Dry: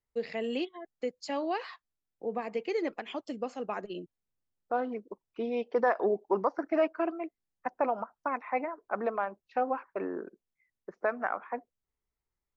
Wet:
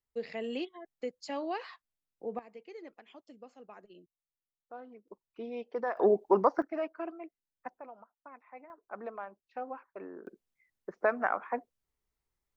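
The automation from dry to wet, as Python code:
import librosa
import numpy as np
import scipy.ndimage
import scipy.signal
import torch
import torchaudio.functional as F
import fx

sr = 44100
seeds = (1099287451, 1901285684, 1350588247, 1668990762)

y = fx.gain(x, sr, db=fx.steps((0.0, -3.5), (2.39, -16.0), (5.08, -7.5), (5.97, 3.5), (6.62, -8.0), (7.79, -19.0), (8.7, -10.0), (10.27, 2.0)))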